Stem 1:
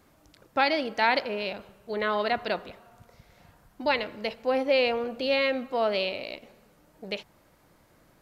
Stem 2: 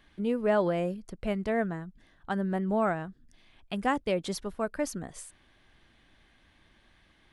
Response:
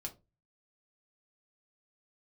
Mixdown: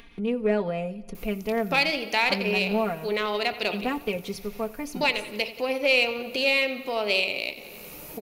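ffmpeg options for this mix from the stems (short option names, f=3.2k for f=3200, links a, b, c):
-filter_complex "[0:a]acompressor=threshold=-41dB:ratio=1.5,aemphasis=mode=production:type=75fm,adelay=1150,volume=3dB,asplit=3[a][b][c];[b]volume=-5dB[d];[c]volume=-11.5dB[e];[1:a]agate=range=-15dB:threshold=-54dB:ratio=16:detection=peak,aecho=1:1:4.3:0.84,volume=-4.5dB,asplit=3[f][g][h];[g]volume=-6.5dB[i];[h]volume=-19.5dB[j];[2:a]atrim=start_sample=2205[k];[d][i]amix=inputs=2:normalize=0[l];[l][k]afir=irnorm=-1:irlink=0[m];[e][j]amix=inputs=2:normalize=0,aecho=0:1:89|178|267|356|445|534|623|712:1|0.56|0.314|0.176|0.0983|0.0551|0.0308|0.0173[n];[a][f][m][n]amix=inputs=4:normalize=0,equalizer=f=400:t=o:w=0.33:g=6,equalizer=f=1.6k:t=o:w=0.33:g=-6,equalizer=f=2.5k:t=o:w=0.33:g=10,equalizer=f=8k:t=o:w=0.33:g=-7,acompressor=mode=upward:threshold=-28dB:ratio=2.5,aeval=exprs='0.422*(cos(1*acos(clip(val(0)/0.422,-1,1)))-cos(1*PI/2))+0.0133*(cos(7*acos(clip(val(0)/0.422,-1,1)))-cos(7*PI/2))':c=same"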